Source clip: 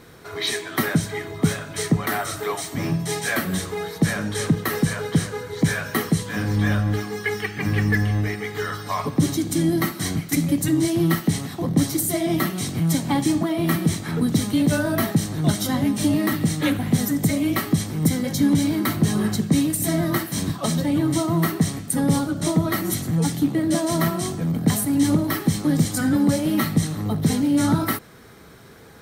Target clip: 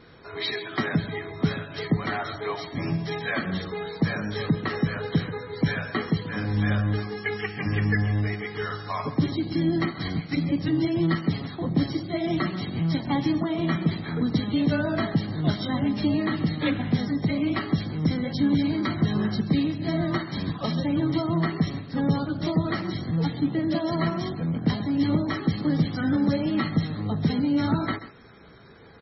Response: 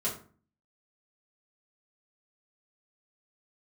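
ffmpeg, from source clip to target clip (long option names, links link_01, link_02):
-af "aecho=1:1:134:0.2,volume=-3.5dB" -ar 24000 -c:a libmp3lame -b:a 16k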